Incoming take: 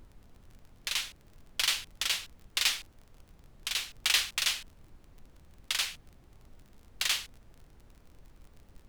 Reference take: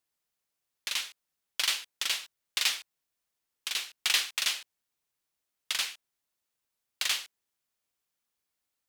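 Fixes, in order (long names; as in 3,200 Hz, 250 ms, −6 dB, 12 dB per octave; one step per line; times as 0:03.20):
click removal
noise reduction from a noise print 26 dB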